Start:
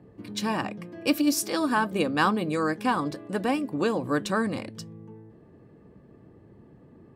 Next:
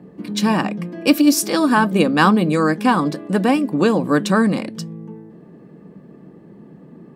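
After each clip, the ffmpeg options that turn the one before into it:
-af "lowshelf=f=130:t=q:w=3:g=-8.5,volume=8dB"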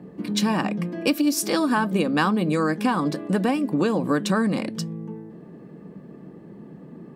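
-af "acompressor=threshold=-19dB:ratio=4"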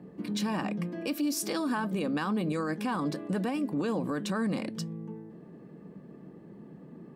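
-af "alimiter=limit=-17dB:level=0:latency=1:release=12,volume=-6dB"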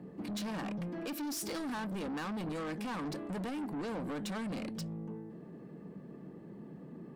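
-af "asoftclip=type=tanh:threshold=-35.5dB"

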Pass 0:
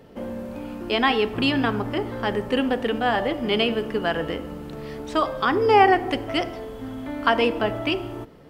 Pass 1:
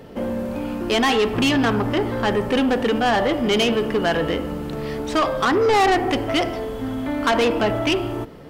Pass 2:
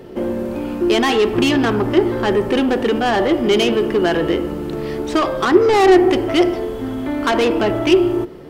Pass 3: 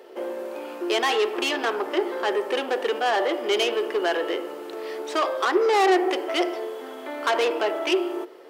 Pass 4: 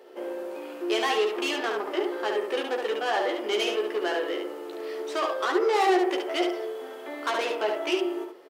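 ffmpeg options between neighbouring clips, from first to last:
-af "asoftclip=type=tanh:threshold=-21.5dB,volume=7.5dB"
-af "equalizer=f=360:w=6.5:g=15,volume=1dB"
-af "highpass=f=420:w=0.5412,highpass=f=420:w=1.3066,volume=-4.5dB"
-af "aecho=1:1:14|71:0.531|0.596,volume=-5.5dB"

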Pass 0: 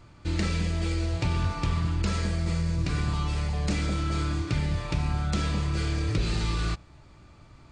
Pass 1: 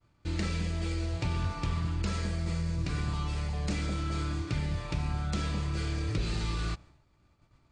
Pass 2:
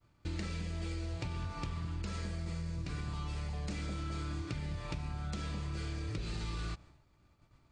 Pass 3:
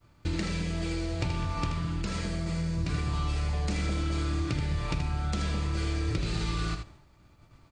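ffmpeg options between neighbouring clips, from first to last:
-af "agate=range=-33dB:threshold=-43dB:ratio=3:detection=peak,volume=-4.5dB"
-af "acompressor=threshold=-34dB:ratio=6,volume=-1dB"
-af "aecho=1:1:79:0.447,volume=8dB"

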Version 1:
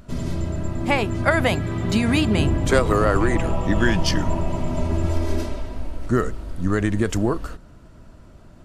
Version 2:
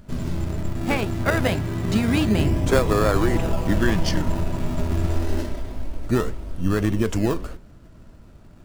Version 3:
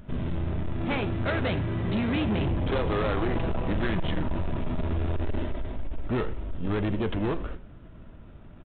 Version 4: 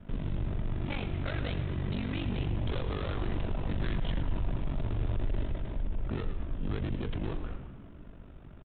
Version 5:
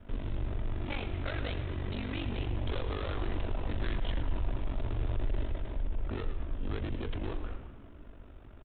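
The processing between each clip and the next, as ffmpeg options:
-filter_complex "[0:a]asplit=2[a][b];[b]acrusher=samples=29:mix=1:aa=0.000001:lfo=1:lforange=29:lforate=0.26,volume=-4dB[c];[a][c]amix=inputs=2:normalize=0,flanger=delay=4.5:depth=7:regen=88:speed=1.7:shape=sinusoidal"
-af "aresample=8000,asoftclip=type=tanh:threshold=-23dB,aresample=44100,aecho=1:1:83:0.112"
-filter_complex "[0:a]aeval=exprs='val(0)*sin(2*PI*24*n/s)':c=same,asplit=7[a][b][c][d][e][f][g];[b]adelay=111,afreqshift=-75,volume=-12dB[h];[c]adelay=222,afreqshift=-150,volume=-16.9dB[i];[d]adelay=333,afreqshift=-225,volume=-21.8dB[j];[e]adelay=444,afreqshift=-300,volume=-26.6dB[k];[f]adelay=555,afreqshift=-375,volume=-31.5dB[l];[g]adelay=666,afreqshift=-450,volume=-36.4dB[m];[a][h][i][j][k][l][m]amix=inputs=7:normalize=0,acrossover=split=150|3000[n][o][p];[o]acompressor=threshold=-42dB:ratio=2[q];[n][q][p]amix=inputs=3:normalize=0"
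-af "equalizer=f=160:t=o:w=0.61:g=-13"

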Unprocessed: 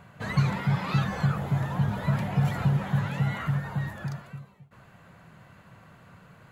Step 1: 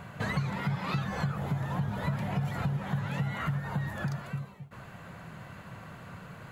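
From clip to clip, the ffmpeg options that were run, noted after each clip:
-af "acompressor=threshold=-36dB:ratio=5,volume=6.5dB"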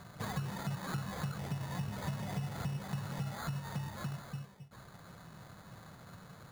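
-af "acrusher=samples=16:mix=1:aa=0.000001,volume=-7dB"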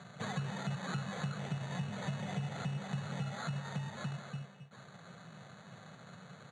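-filter_complex "[0:a]asuperstop=centerf=5100:order=4:qfactor=2.9,highpass=f=130:w=0.5412,highpass=f=130:w=1.3066,equalizer=f=310:t=q:w=4:g=-9,equalizer=f=1k:t=q:w=4:g=-6,equalizer=f=4.9k:t=q:w=4:g=5,lowpass=f=7.3k:w=0.5412,lowpass=f=7.3k:w=1.3066,asplit=2[a][b];[b]adelay=210,highpass=300,lowpass=3.4k,asoftclip=type=hard:threshold=-36.5dB,volume=-11dB[c];[a][c]amix=inputs=2:normalize=0,volume=2dB"

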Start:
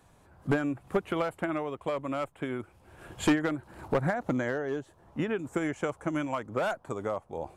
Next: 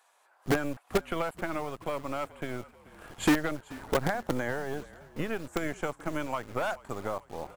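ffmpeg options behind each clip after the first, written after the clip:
-filter_complex "[0:a]acrossover=split=610[a][b];[a]acrusher=bits=5:dc=4:mix=0:aa=0.000001[c];[c][b]amix=inputs=2:normalize=0,asplit=5[d][e][f][g][h];[e]adelay=433,afreqshift=-39,volume=-20.5dB[i];[f]adelay=866,afreqshift=-78,volume=-25.4dB[j];[g]adelay=1299,afreqshift=-117,volume=-30.3dB[k];[h]adelay=1732,afreqshift=-156,volume=-35.1dB[l];[d][i][j][k][l]amix=inputs=5:normalize=0"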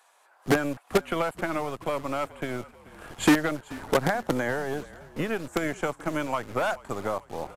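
-filter_complex "[0:a]acrossover=split=110[a][b];[a]acompressor=threshold=-45dB:ratio=6[c];[c][b]amix=inputs=2:normalize=0,aresample=32000,aresample=44100,volume=4.5dB"

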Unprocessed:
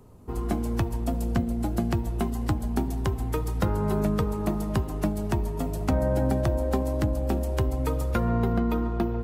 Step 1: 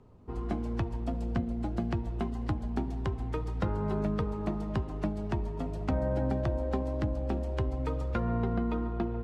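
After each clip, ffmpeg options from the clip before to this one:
-af "lowpass=4k,volume=-5.5dB"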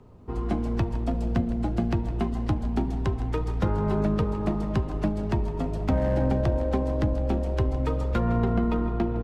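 -filter_complex "[0:a]acrossover=split=380[a][b];[b]asoftclip=type=hard:threshold=-31.5dB[c];[a][c]amix=inputs=2:normalize=0,asplit=6[d][e][f][g][h][i];[e]adelay=160,afreqshift=-43,volume=-16dB[j];[f]adelay=320,afreqshift=-86,volume=-21dB[k];[g]adelay=480,afreqshift=-129,volume=-26.1dB[l];[h]adelay=640,afreqshift=-172,volume=-31.1dB[m];[i]adelay=800,afreqshift=-215,volume=-36.1dB[n];[d][j][k][l][m][n]amix=inputs=6:normalize=0,volume=6dB"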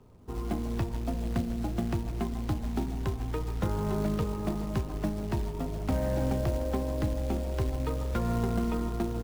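-af "acrusher=bits=5:mode=log:mix=0:aa=0.000001,volume=-5dB"

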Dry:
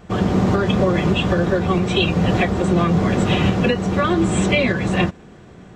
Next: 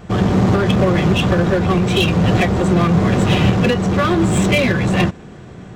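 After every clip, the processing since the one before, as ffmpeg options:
-filter_complex "[0:a]equalizer=f=120:w=1.9:g=4.5,asplit=2[a][b];[b]aeval=exprs='0.0944*(abs(mod(val(0)/0.0944+3,4)-2)-1)':c=same,volume=-6dB[c];[a][c]amix=inputs=2:normalize=0,volume=1.5dB"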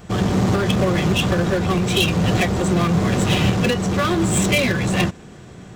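-af "highshelf=f=4.4k:g=11,volume=-4dB"

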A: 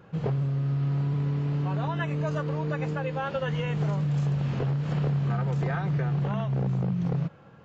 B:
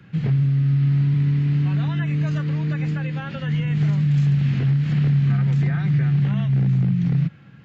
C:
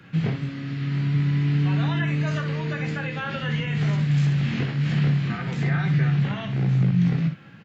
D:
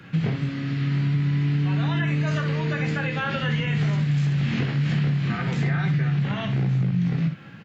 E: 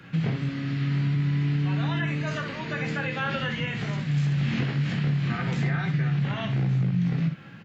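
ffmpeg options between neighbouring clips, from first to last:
-filter_complex "[0:a]equalizer=f=125:t=o:w=1:g=8,equalizer=f=250:t=o:w=1:g=7,equalizer=f=500:t=o:w=1:g=-9,equalizer=f=1k:t=o:w=1:g=-7,equalizer=f=2k:t=o:w=1:g=10,equalizer=f=4k:t=o:w=1:g=5,acrossover=split=160|460|1200[a][b][c][d];[d]alimiter=level_in=8dB:limit=-24dB:level=0:latency=1:release=34,volume=-8dB[e];[a][b][c][e]amix=inputs=4:normalize=0"
-filter_complex "[0:a]lowshelf=f=190:g=-9.5,asplit=2[a][b];[b]aecho=0:1:18|62:0.473|0.422[c];[a][c]amix=inputs=2:normalize=0,volume=3.5dB"
-af "acompressor=threshold=-23dB:ratio=6,volume=3.5dB"
-af "bandreject=f=50:t=h:w=6,bandreject=f=100:t=h:w=6,bandreject=f=150:t=h:w=6,bandreject=f=200:t=h:w=6,bandreject=f=250:t=h:w=6,bandreject=f=300:t=h:w=6,bandreject=f=350:t=h:w=6,bandreject=f=400:t=h:w=6,bandreject=f=450:t=h:w=6,volume=-1.5dB"

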